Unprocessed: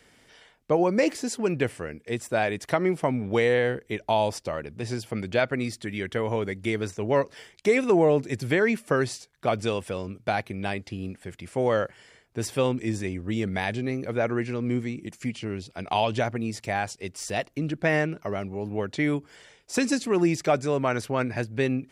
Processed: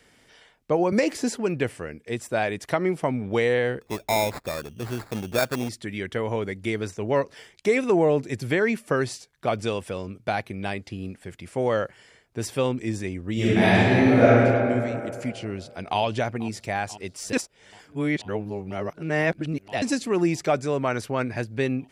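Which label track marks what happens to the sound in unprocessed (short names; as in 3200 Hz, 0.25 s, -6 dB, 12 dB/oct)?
0.920000	1.370000	three-band squash depth 100%
3.810000	5.690000	sample-rate reducer 3000 Hz
13.330000	14.270000	reverb throw, RT60 2.5 s, DRR -10.5 dB
15.440000	15.990000	echo throw 0.49 s, feedback 80%, level -17.5 dB
17.330000	19.820000	reverse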